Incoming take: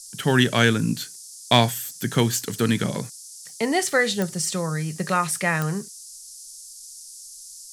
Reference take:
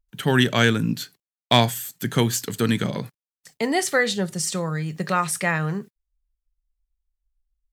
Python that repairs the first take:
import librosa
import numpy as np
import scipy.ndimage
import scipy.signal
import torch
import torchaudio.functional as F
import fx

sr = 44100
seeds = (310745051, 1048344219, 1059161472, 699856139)

y = fx.fix_declick_ar(x, sr, threshold=10.0)
y = fx.noise_reduce(y, sr, print_start_s=6.63, print_end_s=7.13, reduce_db=30.0)